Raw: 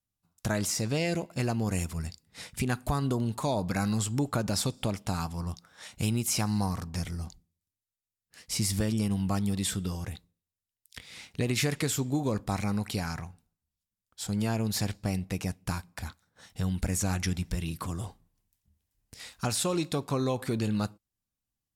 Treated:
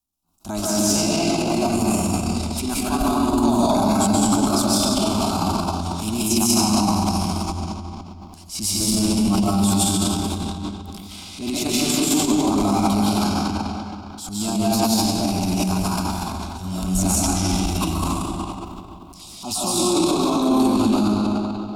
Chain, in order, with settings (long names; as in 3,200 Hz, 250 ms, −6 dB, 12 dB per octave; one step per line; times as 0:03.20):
0:19.21–0:19.73: Chebyshev band-stop filter 1,100–2,800 Hz, order 2
convolution reverb RT60 2.9 s, pre-delay 100 ms, DRR −8 dB
transient designer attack −9 dB, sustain +9 dB
in parallel at −2 dB: brickwall limiter −16 dBFS, peak gain reduction 8 dB
on the sum: phaser with its sweep stopped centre 490 Hz, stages 6
level +2 dB